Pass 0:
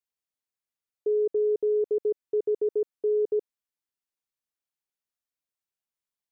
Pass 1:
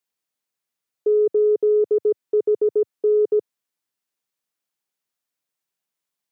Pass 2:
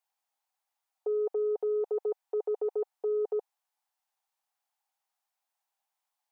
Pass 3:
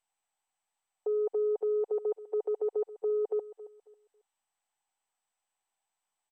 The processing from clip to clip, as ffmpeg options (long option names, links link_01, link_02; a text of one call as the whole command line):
ffmpeg -i in.wav -af "highpass=frequency=110:width=0.5412,highpass=frequency=110:width=1.3066,acontrast=85" out.wav
ffmpeg -i in.wav -af "highpass=frequency=800:width_type=q:width=5.8,volume=-3.5dB" out.wav
ffmpeg -i in.wav -af "aecho=1:1:273|546|819:0.15|0.0404|0.0109,aresample=8000,aresample=44100" -ar 32000 -c:a mp2 -b:a 192k out.mp2